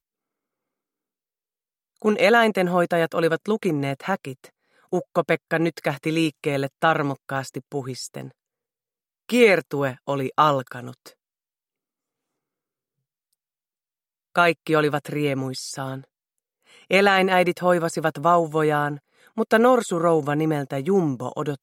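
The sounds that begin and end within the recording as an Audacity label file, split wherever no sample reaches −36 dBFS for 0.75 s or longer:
2.020000	8.280000	sound
9.300000	11.080000	sound
14.360000	16.010000	sound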